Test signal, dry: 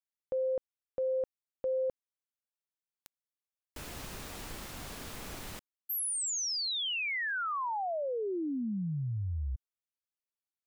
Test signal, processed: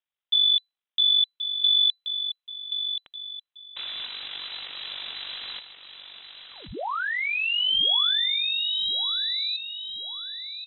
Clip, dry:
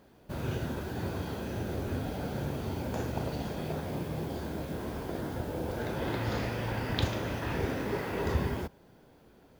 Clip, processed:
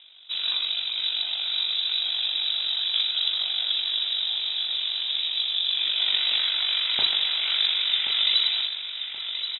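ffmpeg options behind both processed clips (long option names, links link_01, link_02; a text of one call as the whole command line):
ffmpeg -i in.wav -af "equalizer=frequency=680:width=0.84:gain=7.5,tremolo=f=48:d=0.621,aecho=1:1:1078|2156|3234|4312:0.355|0.138|0.054|0.021,lowpass=frequency=3400:width_type=q:width=0.5098,lowpass=frequency=3400:width_type=q:width=0.6013,lowpass=frequency=3400:width_type=q:width=0.9,lowpass=frequency=3400:width_type=q:width=2.563,afreqshift=-4000,volume=7.5dB" out.wav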